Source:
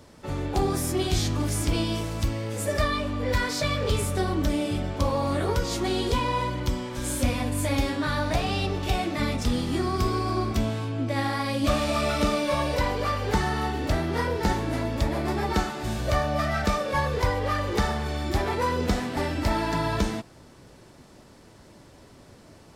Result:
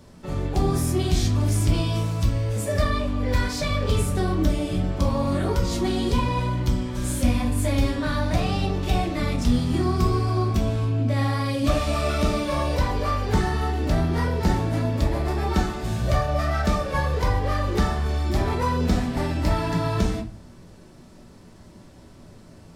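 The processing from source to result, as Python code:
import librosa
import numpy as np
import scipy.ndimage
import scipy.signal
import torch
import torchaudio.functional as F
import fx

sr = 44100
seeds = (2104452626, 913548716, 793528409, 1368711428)

y = fx.bass_treble(x, sr, bass_db=6, treble_db=1)
y = fx.room_shoebox(y, sr, seeds[0], volume_m3=210.0, walls='furnished', distance_m=1.1)
y = y * 10.0 ** (-2.5 / 20.0)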